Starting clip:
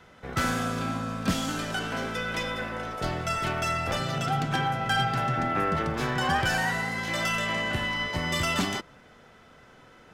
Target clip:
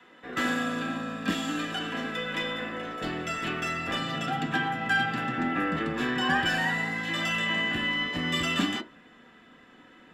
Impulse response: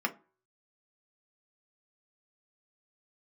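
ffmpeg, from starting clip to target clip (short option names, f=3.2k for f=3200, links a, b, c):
-filter_complex "[0:a]asubboost=boost=3.5:cutoff=200[a];[1:a]atrim=start_sample=2205,asetrate=61740,aresample=44100[b];[a][b]afir=irnorm=-1:irlink=0,volume=-3.5dB"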